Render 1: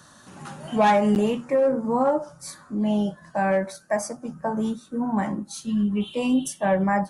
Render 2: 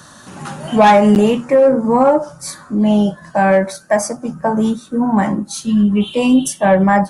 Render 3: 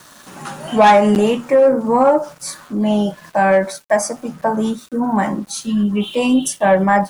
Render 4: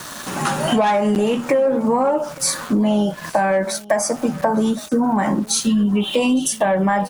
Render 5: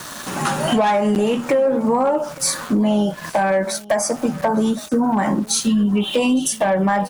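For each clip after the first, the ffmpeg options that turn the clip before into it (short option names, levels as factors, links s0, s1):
-af "acontrast=71,volume=1.5"
-af "equalizer=f=66:w=0.44:g=-10,aeval=exprs='val(0)*gte(abs(val(0)),0.00944)':c=same"
-filter_complex "[0:a]asplit=2[s0][s1];[s1]alimiter=limit=0.224:level=0:latency=1,volume=1.26[s2];[s0][s2]amix=inputs=2:normalize=0,acompressor=threshold=0.112:ratio=6,aecho=1:1:863:0.075,volume=1.5"
-af "asoftclip=type=hard:threshold=0.299"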